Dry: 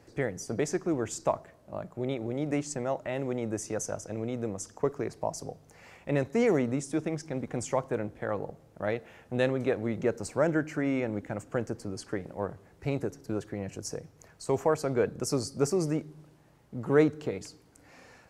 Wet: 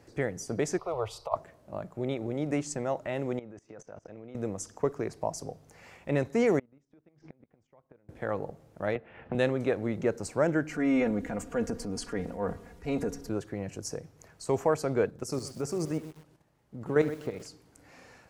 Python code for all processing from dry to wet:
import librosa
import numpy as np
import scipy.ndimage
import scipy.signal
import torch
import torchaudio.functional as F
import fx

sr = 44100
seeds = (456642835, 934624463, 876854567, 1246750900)

y = fx.chain(x, sr, fx.curve_eq(hz=(110.0, 210.0, 470.0, 840.0, 1200.0, 2000.0, 4300.0, 7000.0, 10000.0), db=(0, -20, 3, 5, 12, 3, 5, -19, -5)),
    fx.over_compress(threshold_db=-25.0, ratio=-0.5),
    fx.fixed_phaser(hz=680.0, stages=4), at=(0.78, 1.36))
y = fx.chain(y, sr, fx.lowpass(hz=3300.0, slope=12),
    fx.low_shelf(hz=130.0, db=-7.5),
    fx.level_steps(step_db=23), at=(3.39, 4.35))
y = fx.chain(y, sr, fx.level_steps(step_db=10),
    fx.gate_flip(shuts_db=-31.0, range_db=-27),
    fx.air_absorb(metres=220.0), at=(6.59, 8.09))
y = fx.chain(y, sr, fx.lowpass(hz=3000.0, slope=24),
    fx.transient(attack_db=4, sustain_db=-4),
    fx.band_squash(depth_pct=100), at=(8.95, 9.35))
y = fx.chain(y, sr, fx.low_shelf(hz=63.0, db=11.0),
    fx.comb(ms=4.2, depth=0.78),
    fx.transient(attack_db=-5, sustain_db=5), at=(10.69, 13.3))
y = fx.chain(y, sr, fx.level_steps(step_db=10),
    fx.echo_single(ms=70, db=-16.0),
    fx.echo_crushed(ms=125, feedback_pct=35, bits=7, wet_db=-13.5), at=(15.06, 17.46))